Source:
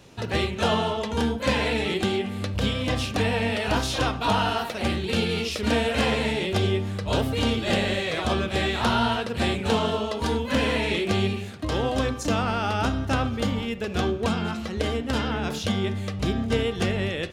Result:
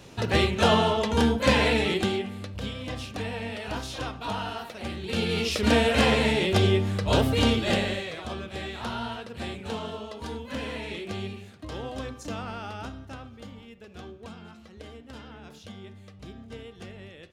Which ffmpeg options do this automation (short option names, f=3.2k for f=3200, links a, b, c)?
-af "volume=13.5dB,afade=t=out:st=1.66:d=0.81:silence=0.266073,afade=t=in:st=4.96:d=0.61:silence=0.281838,afade=t=out:st=7.44:d=0.73:silence=0.237137,afade=t=out:st=12.56:d=0.64:silence=0.421697"